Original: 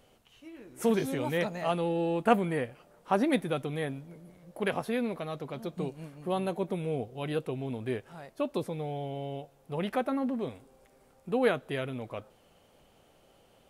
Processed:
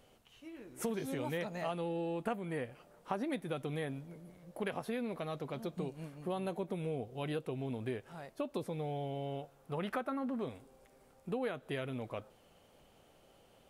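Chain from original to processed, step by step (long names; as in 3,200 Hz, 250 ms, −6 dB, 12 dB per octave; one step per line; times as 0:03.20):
0:09.26–0:10.46: parametric band 1,300 Hz +7 dB 0.64 octaves
downward compressor 5 to 1, threshold −32 dBFS, peak gain reduction 14.5 dB
level −2 dB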